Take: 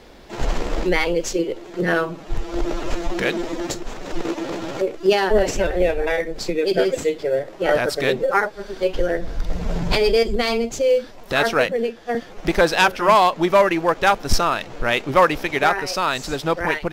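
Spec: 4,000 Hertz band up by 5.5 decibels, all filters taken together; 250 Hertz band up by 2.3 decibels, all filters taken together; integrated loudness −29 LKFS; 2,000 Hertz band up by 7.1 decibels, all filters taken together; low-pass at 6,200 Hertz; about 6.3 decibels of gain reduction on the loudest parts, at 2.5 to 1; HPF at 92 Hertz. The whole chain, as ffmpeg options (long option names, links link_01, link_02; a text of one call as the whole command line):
ffmpeg -i in.wav -af "highpass=92,lowpass=6200,equalizer=frequency=250:width_type=o:gain=3.5,equalizer=frequency=2000:width_type=o:gain=8,equalizer=frequency=4000:width_type=o:gain=5,acompressor=threshold=-17dB:ratio=2.5,volume=-7.5dB" out.wav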